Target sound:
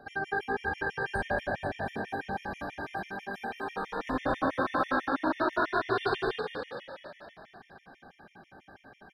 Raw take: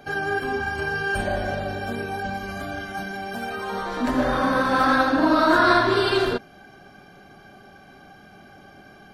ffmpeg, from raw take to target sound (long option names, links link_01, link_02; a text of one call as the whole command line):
ffmpeg -i in.wav -filter_complex "[0:a]bass=frequency=250:gain=-1,treble=frequency=4000:gain=-10,bandreject=frequency=50:width_type=h:width=6,bandreject=frequency=100:width_type=h:width=6,bandreject=frequency=150:width_type=h:width=6,bandreject=frequency=200:width_type=h:width=6,bandreject=frequency=250:width_type=h:width=6,bandreject=frequency=300:width_type=h:width=6,bandreject=frequency=350:width_type=h:width=6,bandreject=frequency=400:width_type=h:width=6,alimiter=limit=-13.5dB:level=0:latency=1:release=324,asplit=9[link_01][link_02][link_03][link_04][link_05][link_06][link_07][link_08][link_09];[link_02]adelay=233,afreqshift=51,volume=-5.5dB[link_10];[link_03]adelay=466,afreqshift=102,volume=-10.2dB[link_11];[link_04]adelay=699,afreqshift=153,volume=-15dB[link_12];[link_05]adelay=932,afreqshift=204,volume=-19.7dB[link_13];[link_06]adelay=1165,afreqshift=255,volume=-24.4dB[link_14];[link_07]adelay=1398,afreqshift=306,volume=-29.2dB[link_15];[link_08]adelay=1631,afreqshift=357,volume=-33.9dB[link_16];[link_09]adelay=1864,afreqshift=408,volume=-38.6dB[link_17];[link_01][link_10][link_11][link_12][link_13][link_14][link_15][link_16][link_17]amix=inputs=9:normalize=0,afftfilt=real='re*gt(sin(2*PI*6.1*pts/sr)*(1-2*mod(floor(b*sr/1024/1800),2)),0)':imag='im*gt(sin(2*PI*6.1*pts/sr)*(1-2*mod(floor(b*sr/1024/1800),2)),0)':win_size=1024:overlap=0.75,volume=-4.5dB" out.wav